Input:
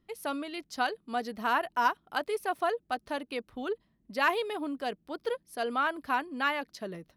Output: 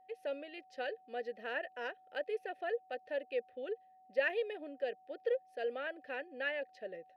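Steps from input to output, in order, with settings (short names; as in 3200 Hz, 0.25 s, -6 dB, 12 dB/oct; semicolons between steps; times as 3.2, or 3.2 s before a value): vowel filter e; whine 750 Hz -65 dBFS; gain +4.5 dB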